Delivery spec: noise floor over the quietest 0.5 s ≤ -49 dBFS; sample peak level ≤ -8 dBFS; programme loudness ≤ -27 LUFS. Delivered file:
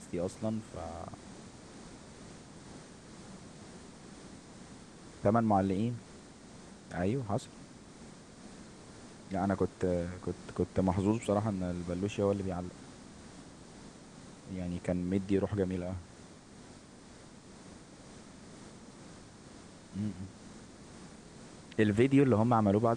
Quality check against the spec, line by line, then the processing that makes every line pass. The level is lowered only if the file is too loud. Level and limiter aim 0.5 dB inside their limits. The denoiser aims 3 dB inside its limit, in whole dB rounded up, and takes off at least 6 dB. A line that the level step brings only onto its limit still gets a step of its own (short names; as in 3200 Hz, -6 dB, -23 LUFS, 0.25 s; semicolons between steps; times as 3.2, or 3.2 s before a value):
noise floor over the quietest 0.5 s -53 dBFS: OK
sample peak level -14.0 dBFS: OK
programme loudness -32.5 LUFS: OK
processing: none